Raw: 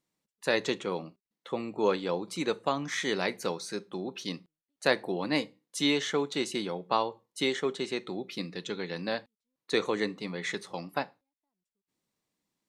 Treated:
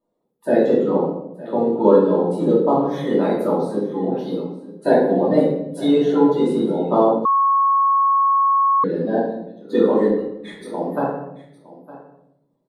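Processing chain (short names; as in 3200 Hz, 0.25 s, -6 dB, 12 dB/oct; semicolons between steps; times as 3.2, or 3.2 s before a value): bin magnitudes rounded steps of 30 dB; EQ curve 110 Hz 0 dB, 180 Hz +12 dB, 290 Hz +9 dB, 520 Hz +15 dB, 1400 Hz +2 dB, 2300 Hz -14 dB, 3400 Hz -5 dB, 6500 Hz -15 dB, 11000 Hz +2 dB; 10.09–10.64 negative-ratio compressor -47 dBFS, ratio -1; echo 0.912 s -18 dB; shoebox room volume 210 m³, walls mixed, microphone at 2.7 m; 7.25–8.84 bleep 1100 Hz -6.5 dBFS; gain -6.5 dB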